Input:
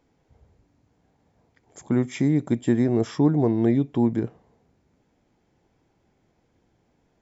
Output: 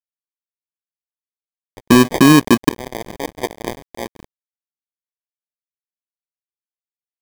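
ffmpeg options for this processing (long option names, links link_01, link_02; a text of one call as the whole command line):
ffmpeg -i in.wav -af "asetnsamples=nb_out_samples=441:pad=0,asendcmd='2.69 highpass f 1200',highpass=220,adynamicequalizer=threshold=0.00224:dfrequency=5200:dqfactor=0.7:tfrequency=5200:tqfactor=0.7:attack=5:release=100:ratio=0.375:range=2:mode=cutabove:tftype=bell,acrusher=samples=32:mix=1:aa=0.000001,aeval=exprs='sgn(val(0))*max(abs(val(0))-0.00891,0)':channel_layout=same,alimiter=level_in=21dB:limit=-1dB:release=50:level=0:latency=1,volume=-1dB" out.wav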